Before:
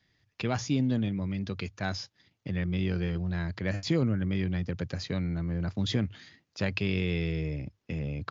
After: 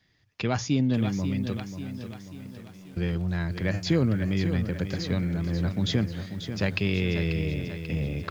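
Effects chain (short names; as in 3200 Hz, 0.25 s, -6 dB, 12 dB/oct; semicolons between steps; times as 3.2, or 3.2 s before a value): 1.57–2.97 flipped gate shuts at -35 dBFS, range -24 dB; lo-fi delay 0.539 s, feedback 55%, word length 9-bit, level -9 dB; gain +3 dB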